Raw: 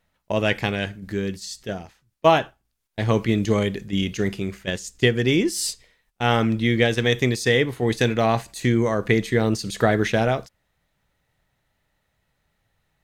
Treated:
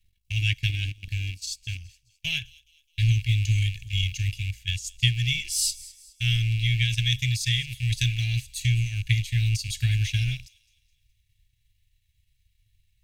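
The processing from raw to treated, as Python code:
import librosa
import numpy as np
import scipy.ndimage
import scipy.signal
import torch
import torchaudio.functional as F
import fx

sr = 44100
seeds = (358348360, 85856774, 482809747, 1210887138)

y = fx.rattle_buzz(x, sr, strikes_db=-32.0, level_db=-23.0)
y = scipy.signal.sosfilt(scipy.signal.ellip(3, 1.0, 40, [110.0, 2500.0], 'bandstop', fs=sr, output='sos'), y)
y = fx.low_shelf(y, sr, hz=90.0, db=6.0)
y = y + 0.42 * np.pad(y, (int(1.8 * sr / 1000.0), 0))[:len(y)]
y = fx.dynamic_eq(y, sr, hz=1100.0, q=0.72, threshold_db=-44.0, ratio=4.0, max_db=-4)
y = fx.transient(y, sr, attack_db=2, sustain_db=fx.steps((0.0, -12.0), (1.76, -3.0)))
y = fx.echo_wet_highpass(y, sr, ms=210, feedback_pct=42, hz=4400.0, wet_db=-18.0)
y = y * librosa.db_to_amplitude(1.0)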